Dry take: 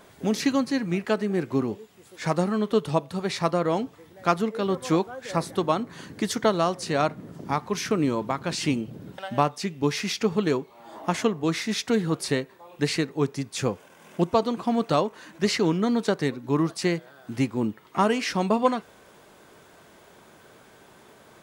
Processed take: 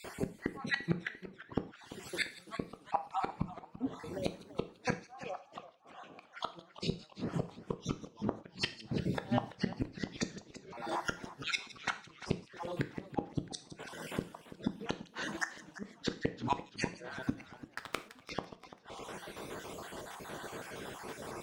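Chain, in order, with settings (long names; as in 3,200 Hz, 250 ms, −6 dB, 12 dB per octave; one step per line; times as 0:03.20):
time-frequency cells dropped at random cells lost 39%
0:03.11–0:03.57: graphic EQ with 15 bands 160 Hz +12 dB, 630 Hz +5 dB, 1,600 Hz −6 dB, 4,000 Hz −7 dB
treble cut that deepens with the level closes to 1,300 Hz, closed at −22.5 dBFS
0:17.49–0:18.23: leveller curve on the samples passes 5
downward compressor 4 to 1, threshold −33 dBFS, peak gain reduction 16.5 dB
gate with flip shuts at −27 dBFS, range −40 dB
0:05.11–0:06.33: formant filter a
delay with a high-pass on its return 164 ms, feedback 36%, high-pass 3,200 Hz, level −14.5 dB
reverb whose tail is shaped and stops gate 150 ms falling, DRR 9 dB
feedback echo with a swinging delay time 339 ms, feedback 45%, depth 170 cents, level −15 dB
level +8.5 dB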